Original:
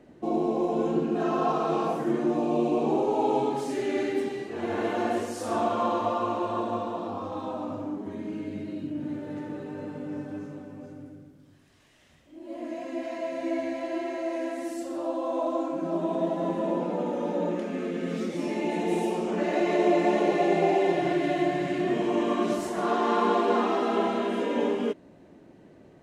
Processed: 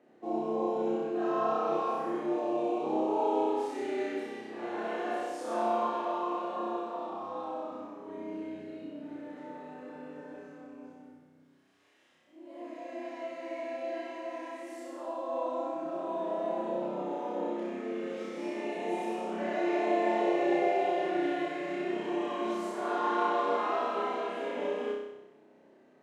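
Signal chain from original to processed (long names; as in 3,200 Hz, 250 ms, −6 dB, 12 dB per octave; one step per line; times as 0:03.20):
Bessel high-pass filter 410 Hz, order 2
high-shelf EQ 3,500 Hz −8.5 dB
on a send: flutter between parallel walls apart 5.4 metres, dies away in 0.91 s
on the sum: level −6.5 dB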